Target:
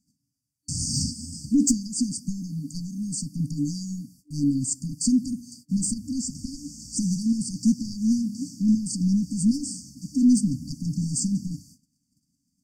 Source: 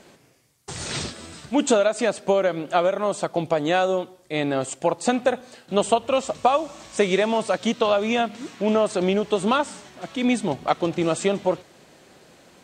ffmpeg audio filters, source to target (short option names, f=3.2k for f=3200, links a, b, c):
-af "asoftclip=type=tanh:threshold=-16.5dB,agate=range=-25dB:threshold=-47dB:ratio=16:detection=peak,afftfilt=real='re*(1-between(b*sr/4096,300,4500))':imag='im*(1-between(b*sr/4096,300,4500))':win_size=4096:overlap=0.75,volume=6.5dB"